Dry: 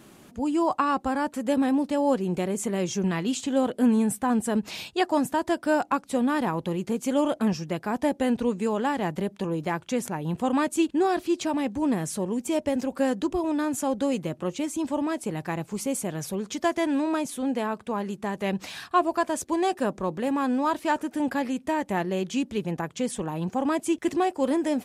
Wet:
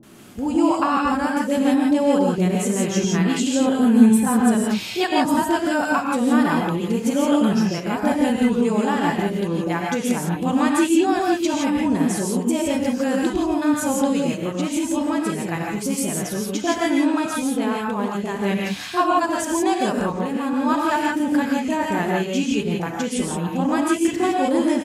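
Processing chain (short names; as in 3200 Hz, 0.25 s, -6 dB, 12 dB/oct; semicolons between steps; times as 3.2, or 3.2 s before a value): 20.09–20.53 compressor, threshold -27 dBFS, peak gain reduction 5.5 dB; bands offset in time lows, highs 30 ms, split 620 Hz; non-linear reverb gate 0.19 s rising, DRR -1.5 dB; gain +3.5 dB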